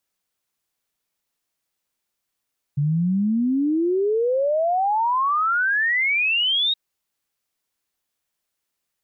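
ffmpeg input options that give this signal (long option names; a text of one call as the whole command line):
ffmpeg -f lavfi -i "aevalsrc='0.133*clip(min(t,3.97-t)/0.01,0,1)*sin(2*PI*140*3.97/log(3800/140)*(exp(log(3800/140)*t/3.97)-1))':duration=3.97:sample_rate=44100" out.wav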